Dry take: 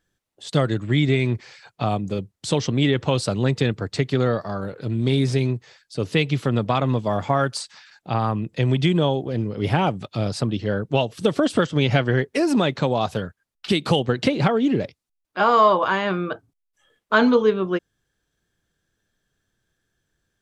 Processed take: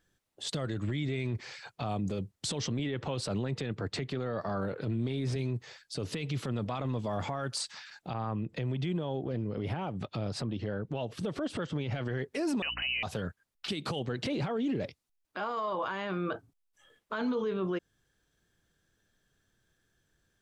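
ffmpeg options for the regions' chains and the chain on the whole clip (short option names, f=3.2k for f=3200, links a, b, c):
-filter_complex "[0:a]asettb=1/sr,asplit=3[a][b][c];[a]atrim=end=2.794[d];[b]atrim=start=2.79:end=5.36,asetpts=PTS-STARTPTS,afade=t=in:d=0.004:c=qsin,afade=t=out:st=2.566:d=0.004:c=qsin,highpass=79,bass=f=250:g=-1,treble=f=4k:g=-7[e];[c]atrim=start=5.356[f];[d][e]acrossfade=d=0.004:c1=hsin:c2=qsin[g];[g][f]acrossfade=d=0.004:c1=qsin:c2=hsin,asettb=1/sr,asplit=3[h][i][j];[h]atrim=end=8.134[k];[i]atrim=start=8.13:end=11.95,asetpts=PTS-STARTPTS,afade=t=in:d=0.004:c=qsin,afade=t=out:st=3.816:d=0.004:c=qsin,highshelf=f=4.4k:g=-11,acompressor=threshold=-32dB:ratio=3:attack=3.2:release=140:knee=1:detection=peak[l];[j]atrim=start=11.946[m];[k][l]acrossfade=d=0.004:c1=hsin:c2=qsin[n];[n][m]acrossfade=d=0.004:c1=qsin:c2=hsin,asettb=1/sr,asplit=3[o][p][q];[o]atrim=end=12.624[r];[p]atrim=start=12.62:end=13.03,asetpts=PTS-STARTPTS,afade=t=in:d=0.004:c=qsin,afade=t=out:st=0.406:d=0.004:c=qsin,lowpass=f=2.6k:t=q:w=0.5098,lowpass=f=2.6k:t=q:w=0.6013,lowpass=f=2.6k:t=q:w=0.9,lowpass=f=2.6k:t=q:w=2.563,afreqshift=-3100,aeval=exprs='val(0)+0.00708*(sin(2*PI*60*n/s)+sin(2*PI*2*60*n/s)/2+sin(2*PI*3*60*n/s)/3+sin(2*PI*4*60*n/s)/4+sin(2*PI*5*60*n/s)/5)':c=same[s];[q]atrim=start=13.026[t];[r][s]acrossfade=d=0.004:c1=hsin:c2=qsin[u];[u][t]acrossfade=d=0.004:c1=qsin:c2=hsin,acompressor=threshold=-23dB:ratio=5,alimiter=level_in=1dB:limit=-24dB:level=0:latency=1:release=21,volume=-1dB"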